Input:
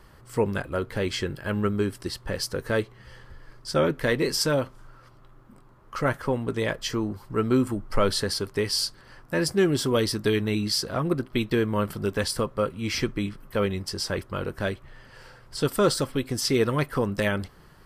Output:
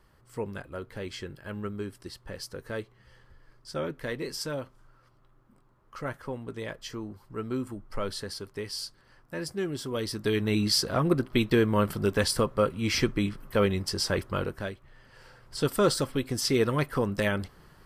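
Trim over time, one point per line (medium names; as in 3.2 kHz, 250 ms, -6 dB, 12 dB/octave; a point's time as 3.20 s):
9.88 s -10 dB
10.61 s +1 dB
14.39 s +1 dB
14.73 s -9 dB
15.62 s -2 dB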